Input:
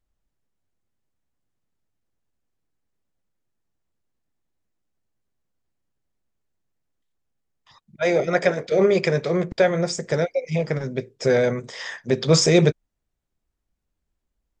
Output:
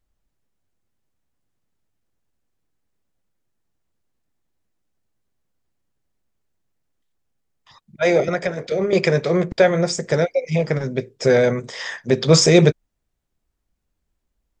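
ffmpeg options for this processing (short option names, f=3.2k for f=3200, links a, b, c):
-filter_complex "[0:a]asettb=1/sr,asplit=3[a][b][c];[a]atrim=end=8.284[d];[b]atrim=start=8.28:end=8.93,asetpts=PTS-STARTPTS,afade=t=in:d=0.004:c=qsin,afade=t=out:st=0.646:d=0.004:c=qsin,acrossover=split=150[e][f];[f]acompressor=threshold=-23dB:ratio=6[g];[e][g]amix=inputs=2:normalize=0[h];[c]atrim=start=8.926[i];[d][h]acrossfade=d=0.004:c1=hsin:c2=qsin[j];[j][i]acrossfade=d=0.004:c1=qsin:c2=hsin,volume=3.5dB"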